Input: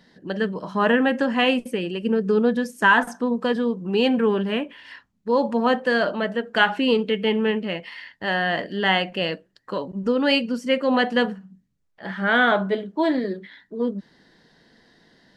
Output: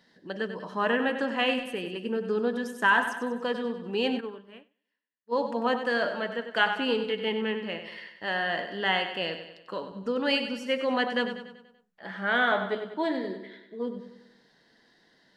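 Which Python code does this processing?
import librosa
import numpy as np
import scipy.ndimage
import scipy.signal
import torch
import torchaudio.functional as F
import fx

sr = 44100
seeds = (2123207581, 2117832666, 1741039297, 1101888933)

y = fx.low_shelf(x, sr, hz=230.0, db=-9.5)
y = fx.echo_feedback(y, sr, ms=96, feedback_pct=50, wet_db=-9.5)
y = fx.upward_expand(y, sr, threshold_db=-38.0, expansion=2.5, at=(4.19, 5.31), fade=0.02)
y = y * librosa.db_to_amplitude(-5.5)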